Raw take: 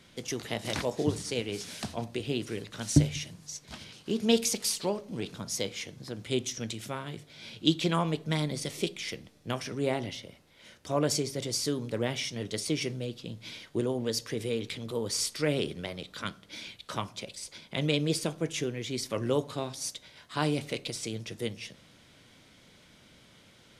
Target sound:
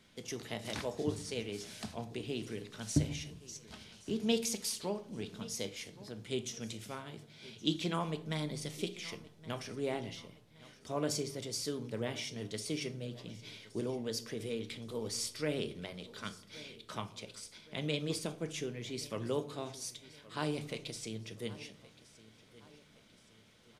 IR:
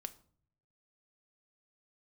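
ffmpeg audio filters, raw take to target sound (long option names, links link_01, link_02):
-filter_complex "[0:a]aecho=1:1:1120|2240|3360|4480:0.112|0.0505|0.0227|0.0102[link_01];[1:a]atrim=start_sample=2205[link_02];[link_01][link_02]afir=irnorm=-1:irlink=0,volume=-3.5dB"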